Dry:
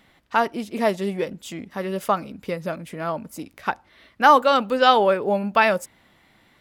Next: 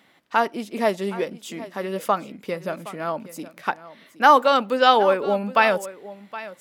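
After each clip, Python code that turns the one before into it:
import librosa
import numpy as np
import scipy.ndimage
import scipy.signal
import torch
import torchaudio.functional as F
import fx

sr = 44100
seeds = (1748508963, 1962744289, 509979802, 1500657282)

y = scipy.signal.sosfilt(scipy.signal.butter(2, 190.0, 'highpass', fs=sr, output='sos'), x)
y = y + 10.0 ** (-16.5 / 20.0) * np.pad(y, (int(768 * sr / 1000.0), 0))[:len(y)]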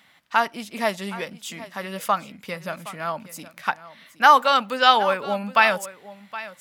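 y = fx.peak_eq(x, sr, hz=370.0, db=-14.0, octaves=1.5)
y = y * librosa.db_to_amplitude(3.5)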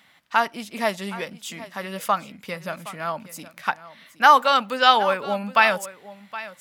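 y = x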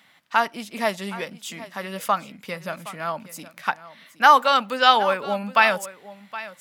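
y = scipy.signal.sosfilt(scipy.signal.butter(2, 95.0, 'highpass', fs=sr, output='sos'), x)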